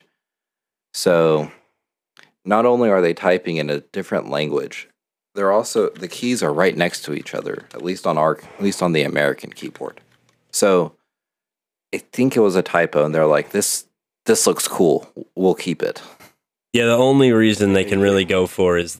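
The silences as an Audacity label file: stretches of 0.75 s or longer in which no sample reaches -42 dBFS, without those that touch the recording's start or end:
10.910000	11.930000	silence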